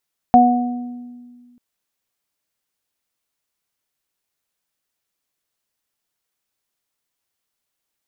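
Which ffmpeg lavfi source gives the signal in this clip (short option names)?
-f lavfi -i "aevalsrc='0.299*pow(10,-3*t/1.92)*sin(2*PI*244*t)+0.0531*pow(10,-3*t/1.06)*sin(2*PI*488*t)+0.531*pow(10,-3*t/0.87)*sin(2*PI*732*t)':d=1.24:s=44100"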